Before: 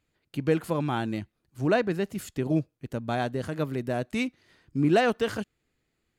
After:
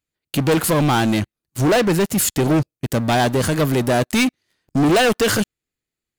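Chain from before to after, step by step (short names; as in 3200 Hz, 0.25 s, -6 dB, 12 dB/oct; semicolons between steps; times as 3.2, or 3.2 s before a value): high shelf 4100 Hz +11.5 dB; sample leveller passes 5; gain -2 dB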